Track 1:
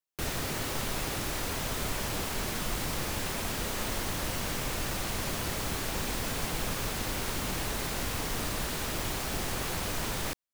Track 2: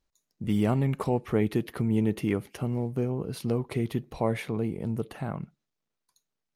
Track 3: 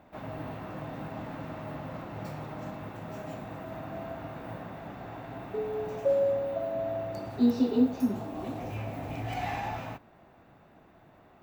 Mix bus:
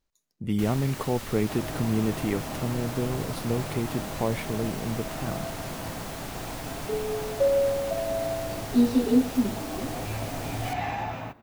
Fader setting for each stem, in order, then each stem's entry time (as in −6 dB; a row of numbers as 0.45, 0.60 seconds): −5.5, −0.5, +3.0 decibels; 0.40, 0.00, 1.35 seconds